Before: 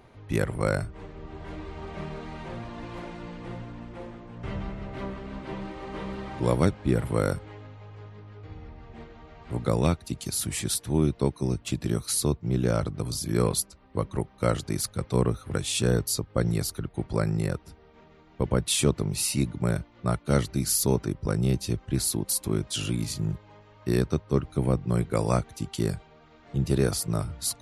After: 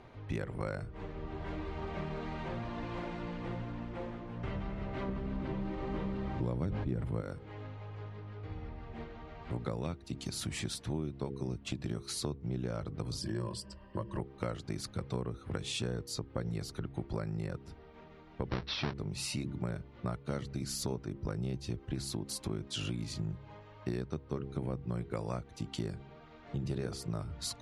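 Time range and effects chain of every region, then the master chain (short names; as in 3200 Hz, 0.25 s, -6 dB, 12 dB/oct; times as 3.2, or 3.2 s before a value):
5.08–7.21 low shelf 350 Hz +10.5 dB + sustainer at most 44 dB/s
13.21–14.19 ripple EQ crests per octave 1.3, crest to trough 14 dB + compressor 1.5:1, threshold -33 dBFS
18.49–18.94 half-waves squared off + rippled Chebyshev low-pass 5700 Hz, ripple 3 dB
whole clip: Bessel low-pass 4800 Hz, order 2; de-hum 68.24 Hz, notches 7; compressor 5:1, threshold -34 dBFS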